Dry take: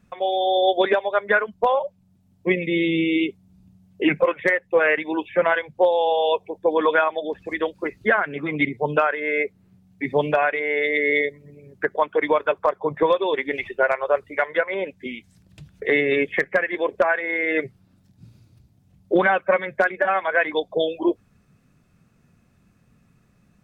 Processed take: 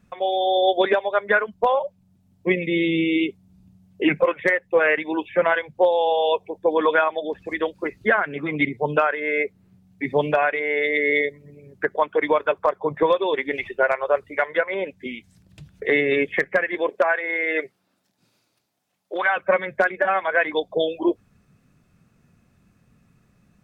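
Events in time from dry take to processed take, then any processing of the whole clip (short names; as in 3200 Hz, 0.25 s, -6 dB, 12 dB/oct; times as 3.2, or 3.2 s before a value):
16.89–19.36 HPF 300 Hz -> 840 Hz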